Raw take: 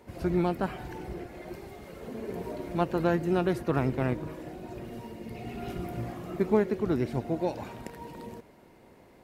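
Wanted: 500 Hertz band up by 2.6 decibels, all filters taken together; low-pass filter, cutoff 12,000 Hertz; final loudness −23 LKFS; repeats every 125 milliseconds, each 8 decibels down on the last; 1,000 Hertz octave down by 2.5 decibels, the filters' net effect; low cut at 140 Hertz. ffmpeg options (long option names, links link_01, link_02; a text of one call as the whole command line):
ffmpeg -i in.wav -af "highpass=140,lowpass=12000,equalizer=frequency=500:width_type=o:gain=5,equalizer=frequency=1000:width_type=o:gain=-6.5,aecho=1:1:125|250|375|500|625:0.398|0.159|0.0637|0.0255|0.0102,volume=6.5dB" out.wav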